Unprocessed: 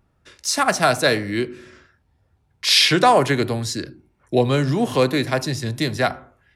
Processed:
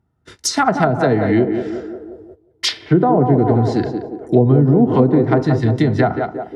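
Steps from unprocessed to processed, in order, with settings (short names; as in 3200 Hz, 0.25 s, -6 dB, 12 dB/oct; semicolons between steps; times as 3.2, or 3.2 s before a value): in parallel at +1 dB: compressor 10:1, threshold -28 dBFS, peak gain reduction 17.5 dB; on the sum: HPF 55 Hz; low shelf 150 Hz +5.5 dB; notch 2500 Hz, Q 9.2; notch comb 560 Hz; narrowing echo 0.178 s, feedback 65%, band-pass 470 Hz, level -5 dB; treble ducked by the level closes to 520 Hz, closed at -11 dBFS; high shelf 7400 Hz +7 dB; gate -41 dBFS, range -14 dB; mismatched tape noise reduction decoder only; gain +4 dB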